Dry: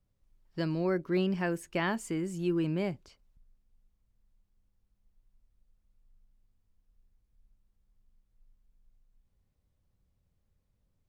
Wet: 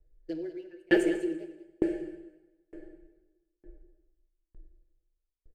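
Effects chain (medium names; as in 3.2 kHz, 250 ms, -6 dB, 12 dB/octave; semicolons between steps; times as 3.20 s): local Wiener filter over 15 samples; bass shelf 68 Hz +8.5 dB; static phaser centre 440 Hz, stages 4; comb 6.4 ms, depth 86%; small resonant body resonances 390/1700 Hz, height 11 dB, ringing for 25 ms; tempo 2×; on a send: delay 195 ms -5 dB; on the sum: plate-style reverb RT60 3.9 s, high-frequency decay 0.7×, DRR 2.5 dB; sawtooth tremolo in dB decaying 1.1 Hz, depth 39 dB; trim +4.5 dB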